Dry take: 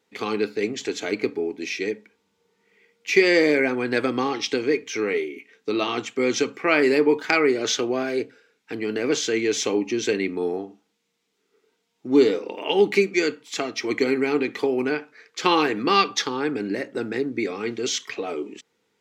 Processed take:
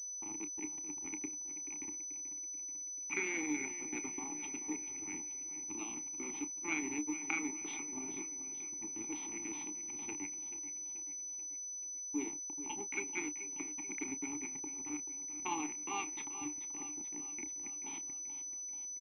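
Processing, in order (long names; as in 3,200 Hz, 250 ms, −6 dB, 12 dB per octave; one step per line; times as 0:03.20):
0:07.64–0:08.87: converter with a step at zero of −34 dBFS
low-pass that shuts in the quiet parts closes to 700 Hz, open at −17 dBFS
first difference
in parallel at +2 dB: downward compressor 6 to 1, threshold −47 dBFS, peak gain reduction 21 dB
on the sum: slack as between gear wheels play −27.5 dBFS
formant filter u
double-tracking delay 30 ms −12 dB
on a send: repeating echo 434 ms, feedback 54%, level −12 dB
on the sum: switching amplifier with a slow clock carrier 6,000 Hz
level +10 dB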